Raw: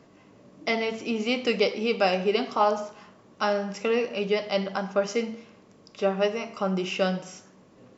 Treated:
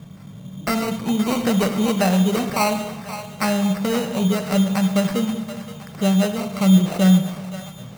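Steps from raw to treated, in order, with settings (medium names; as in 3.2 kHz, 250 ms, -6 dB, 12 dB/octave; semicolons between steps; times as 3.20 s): resonant low shelf 230 Hz +11 dB, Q 3; in parallel at -0.5 dB: compression, threshold -28 dBFS, peak gain reduction 16 dB; on the sum: sample-and-hold 13×; two-band feedback delay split 540 Hz, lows 187 ms, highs 523 ms, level -12 dB; on a send at -13 dB: reverberation RT60 0.95 s, pre-delay 48 ms; 1.35–2.50 s: on the sum: three bands compressed up and down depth 40%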